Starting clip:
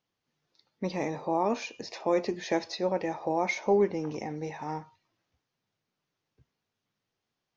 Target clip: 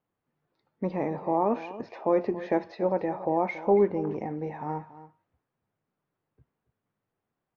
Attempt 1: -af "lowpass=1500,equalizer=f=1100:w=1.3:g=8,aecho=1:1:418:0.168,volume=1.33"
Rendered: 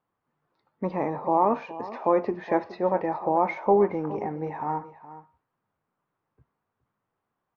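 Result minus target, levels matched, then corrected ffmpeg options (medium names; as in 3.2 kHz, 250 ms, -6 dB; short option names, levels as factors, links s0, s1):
echo 139 ms late; 1 kHz band +3.5 dB
-af "lowpass=1500,aecho=1:1:279:0.168,volume=1.33"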